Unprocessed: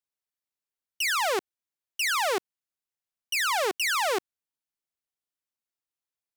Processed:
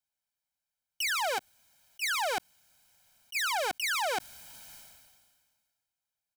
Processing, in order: 1.38–3.88 s: gate -26 dBFS, range -16 dB; comb 1.3 ms, depth 83%; peak limiter -24.5 dBFS, peak gain reduction 8.5 dB; decay stretcher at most 34 dB/s

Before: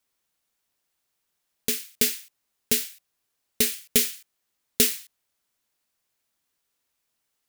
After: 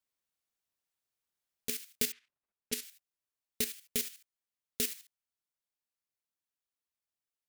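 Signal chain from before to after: 2.12–2.83 s: level-controlled noise filter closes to 1.7 kHz, open at -19.5 dBFS; level held to a coarse grid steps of 11 dB; peaking EQ 85 Hz +5.5 dB 0.22 oct; gain riding within 4 dB 0.5 s; trim -6 dB

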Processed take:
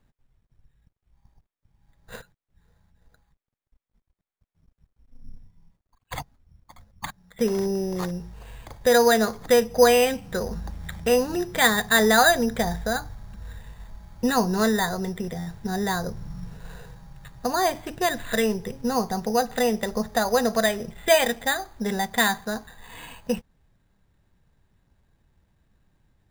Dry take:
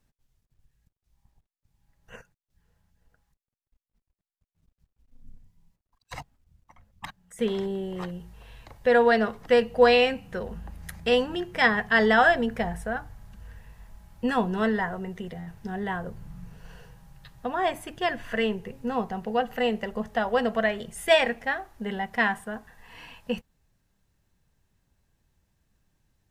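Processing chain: in parallel at 0 dB: compression, threshold -29 dBFS, peak gain reduction 15.5 dB; on the sum: careless resampling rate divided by 8×, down filtered, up hold

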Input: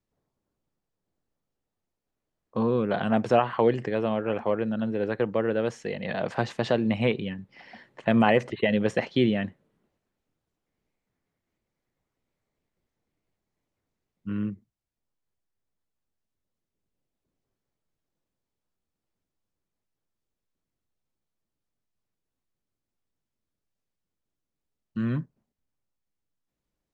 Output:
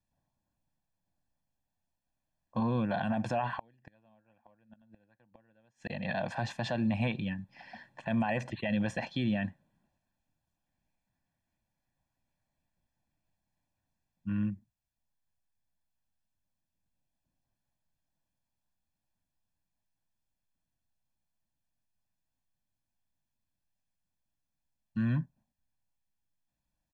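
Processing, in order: 3.56–5.90 s: inverted gate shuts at -21 dBFS, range -35 dB; comb 1.2 ms, depth 85%; peak limiter -18 dBFS, peak gain reduction 12 dB; trim -4.5 dB

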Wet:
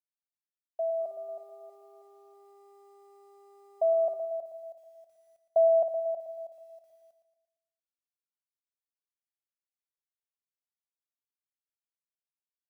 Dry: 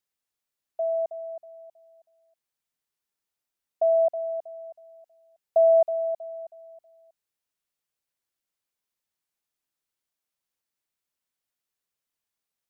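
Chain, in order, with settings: 0.99–4.15 s: mains buzz 400 Hz, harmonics 3, -58 dBFS -6 dB/octave; bit crusher 12-bit; feedback delay 115 ms, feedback 52%, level -9 dB; trim -3.5 dB

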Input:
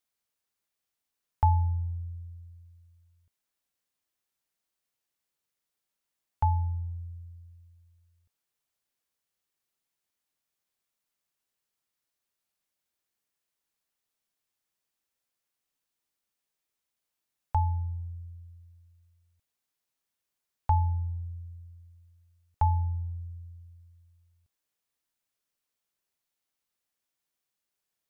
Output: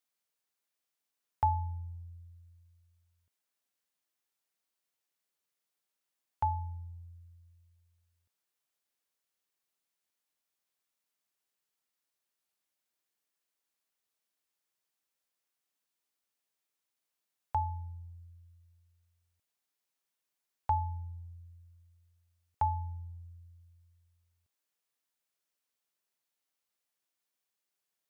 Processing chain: high-pass 210 Hz 6 dB/octave; trim -1.5 dB

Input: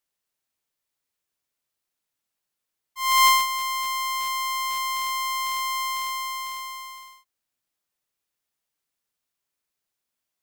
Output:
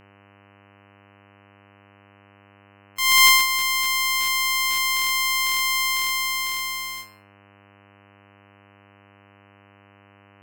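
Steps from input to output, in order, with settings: gate with hold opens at -31 dBFS; high-order bell 790 Hz -12 dB 1.1 oct; in parallel at -0.5 dB: compression, threshold -33 dBFS, peak gain reduction 17 dB; on the sum: mains buzz 100 Hz, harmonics 30, -58 dBFS -3 dB/octave; plate-style reverb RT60 0.62 s, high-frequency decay 0.4×, pre-delay 85 ms, DRR 18 dB; trim +5 dB

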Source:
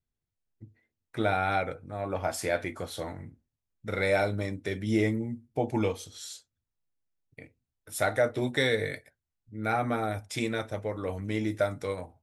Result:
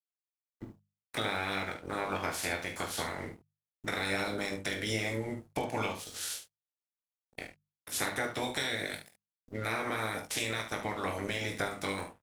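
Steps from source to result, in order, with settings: spectral peaks clipped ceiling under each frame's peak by 21 dB; in parallel at -0.5 dB: peak limiter -20.5 dBFS, peak gain reduction 10.5 dB; on the sum: compression 4:1, threshold -32 dBFS, peak gain reduction 13 dB; crossover distortion -52 dBFS; hum notches 50/100/150/200 Hz; on a send: early reflections 20 ms -7.5 dB, 45 ms -10.5 dB, 72 ms -10.5 dB

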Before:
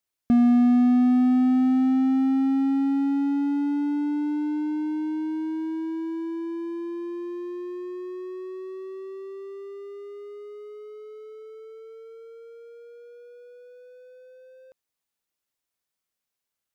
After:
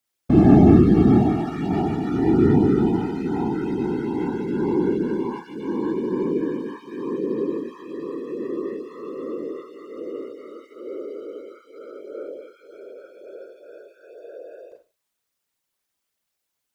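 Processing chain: Schroeder reverb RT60 0.33 s, combs from 33 ms, DRR 0.5 dB; whisper effect; dynamic bell 240 Hz, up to -5 dB, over -28 dBFS, Q 1.8; trim +3 dB

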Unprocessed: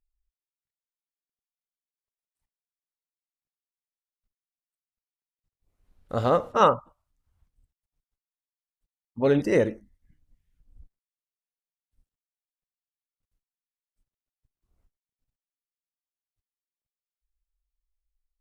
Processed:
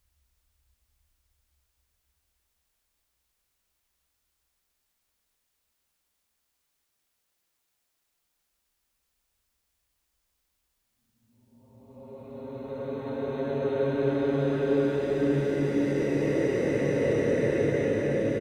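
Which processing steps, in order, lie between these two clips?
peaking EQ 66 Hz +14.5 dB 0.67 oct; loudspeakers at several distances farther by 24 m -9 dB, 97 m -6 dB; Paulstretch 10×, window 0.50 s, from 7.85 s; word length cut 12-bit, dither triangular; trim -5.5 dB

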